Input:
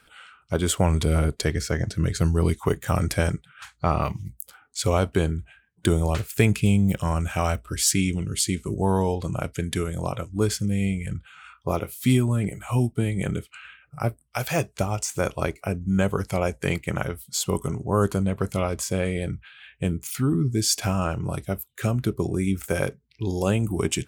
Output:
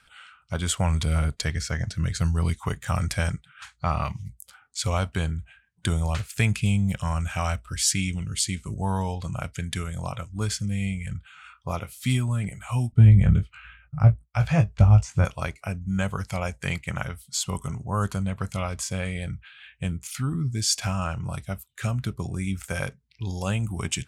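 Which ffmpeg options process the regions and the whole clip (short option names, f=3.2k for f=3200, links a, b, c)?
-filter_complex "[0:a]asettb=1/sr,asplit=3[a][b][c];[a]atrim=end=12.924[d];[b]atrim=start=12.92:end=15.25,asetpts=PTS-STARTPTS,afade=t=in:d=0.004:c=qsin,afade=t=out:st=2.326:d=0.004:c=qsin,agate=range=-33dB:threshold=-58dB:ratio=3:release=100:detection=peak,aemphasis=mode=reproduction:type=riaa,asplit=2[e][f];[f]adelay=19,volume=-7dB[g];[e][g]amix=inputs=2:normalize=0,atrim=end_sample=102753[h];[c]atrim=start=15.246[i];[d][h]acrossfade=d=0.004:c1=hsin:c2=qsin[j];[j][i]acrossfade=d=0.004:c1=qsin:c2=hsin,lowpass=9.5k,equalizer=f=370:w=1.1:g=-14"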